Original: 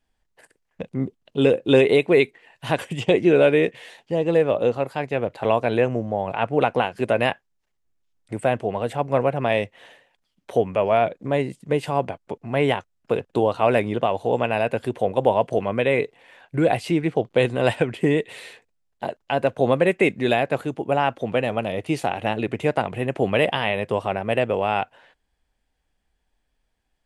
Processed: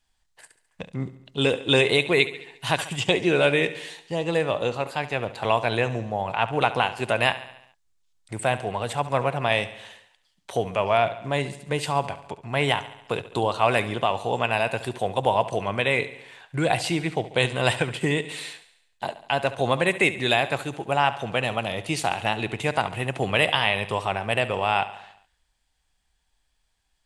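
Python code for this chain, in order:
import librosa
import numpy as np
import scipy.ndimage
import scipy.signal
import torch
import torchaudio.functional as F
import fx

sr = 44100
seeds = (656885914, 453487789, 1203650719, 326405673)

p1 = fx.graphic_eq_10(x, sr, hz=(250, 500, 1000, 4000, 8000), db=(-6, -6, 3, 6, 8))
y = p1 + fx.echo_feedback(p1, sr, ms=70, feedback_pct=57, wet_db=-15.0, dry=0)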